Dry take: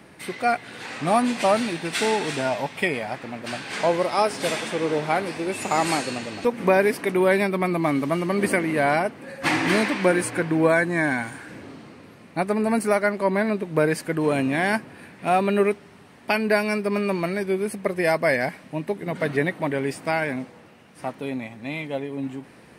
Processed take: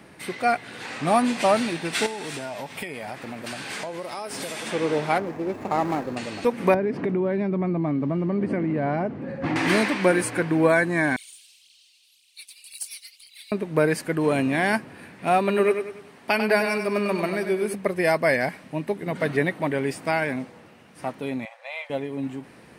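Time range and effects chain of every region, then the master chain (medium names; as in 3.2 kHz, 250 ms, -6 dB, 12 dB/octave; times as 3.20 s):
2.06–4.67 s: compression 8:1, threshold -29 dBFS + treble shelf 9.8 kHz +11.5 dB
5.18–6.17 s: median filter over 15 samples + treble shelf 2.4 kHz -10.5 dB + band-stop 1.5 kHz, Q 19
6.74–9.56 s: tilt EQ -4.5 dB/octave + compression, threshold -21 dBFS + band-pass 110–6200 Hz
11.16–13.52 s: steep high-pass 2.9 kHz 48 dB/octave + phaser 1.9 Hz, delay 3.7 ms, feedback 63%
15.38–17.74 s: bass shelf 100 Hz -11.5 dB + feedback delay 97 ms, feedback 40%, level -7.5 dB
21.45–21.90 s: brick-wall FIR high-pass 480 Hz + treble shelf 7.3 kHz -11 dB
whole clip: none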